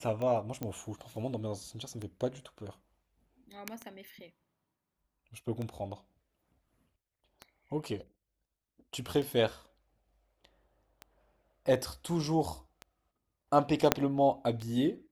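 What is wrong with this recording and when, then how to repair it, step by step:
scratch tick 33 1/3 rpm −26 dBFS
0:00.63: click −22 dBFS
0:13.92: click −6 dBFS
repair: click removal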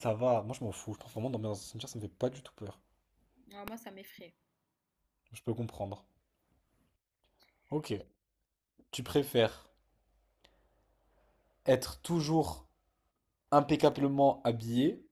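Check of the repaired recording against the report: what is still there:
0:13.92: click

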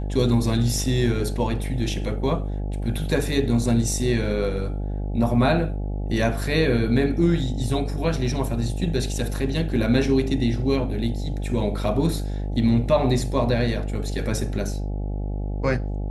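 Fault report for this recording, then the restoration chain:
mains buzz 50 Hz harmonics 17 −27 dBFS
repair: hum removal 50 Hz, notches 17

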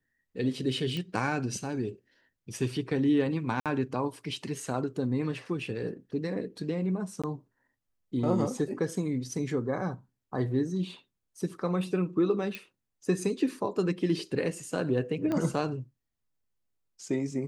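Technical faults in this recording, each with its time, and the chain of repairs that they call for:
0:00.97: click −22 dBFS
0:03.60–0:03.66: drop-out 57 ms
0:07.22–0:07.24: drop-out 16 ms
0:12.55: click −22 dBFS
0:15.32: click −19 dBFS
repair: click removal
repair the gap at 0:03.60, 57 ms
repair the gap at 0:07.22, 16 ms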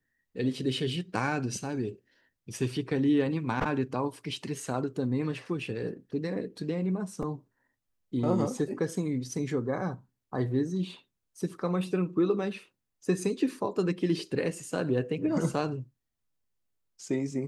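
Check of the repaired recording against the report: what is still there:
0:15.32: click

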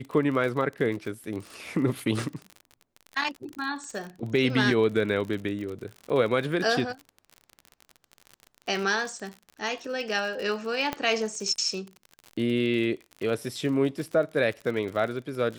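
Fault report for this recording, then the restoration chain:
surface crackle 46 per second −33 dBFS
0:10.93: click −13 dBFS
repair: click removal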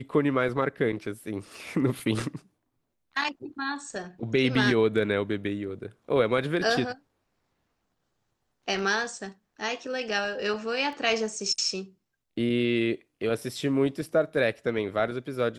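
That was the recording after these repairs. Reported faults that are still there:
0:10.93: click

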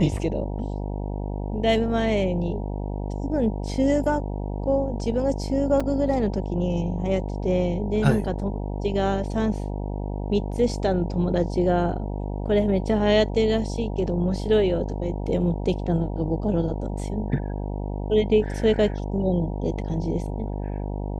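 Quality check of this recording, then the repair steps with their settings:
mains buzz 50 Hz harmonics 19 −29 dBFS
0:05.80: drop-out 4.5 ms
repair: hum removal 50 Hz, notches 19
repair the gap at 0:05.80, 4.5 ms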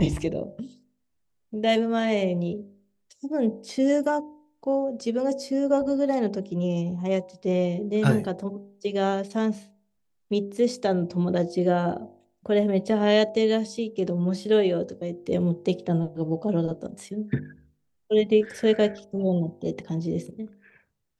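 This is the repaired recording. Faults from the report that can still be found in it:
none of them is left

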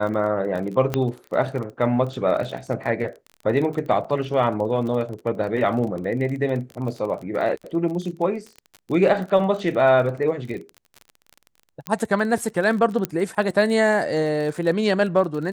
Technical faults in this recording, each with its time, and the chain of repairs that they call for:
surface crackle 30 per second −30 dBFS
0:00.94: click −8 dBFS
0:04.04–0:04.05: drop-out 5.6 ms
0:11.87: click −10 dBFS
0:13.05: click −9 dBFS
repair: click removal
repair the gap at 0:04.04, 5.6 ms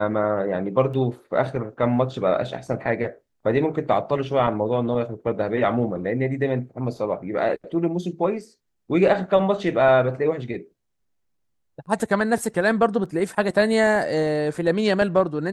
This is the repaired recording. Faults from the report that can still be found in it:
0:00.94: click
0:13.05: click

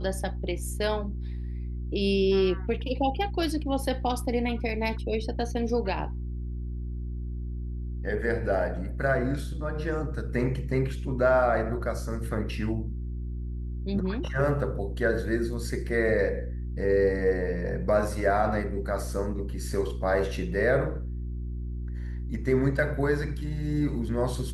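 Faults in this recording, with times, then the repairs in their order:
mains hum 60 Hz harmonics 6 −33 dBFS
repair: hum removal 60 Hz, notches 6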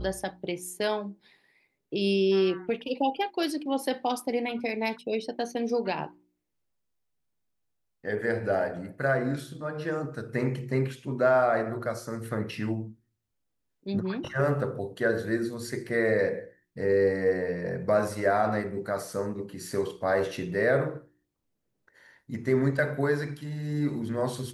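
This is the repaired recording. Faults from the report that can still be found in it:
none of them is left

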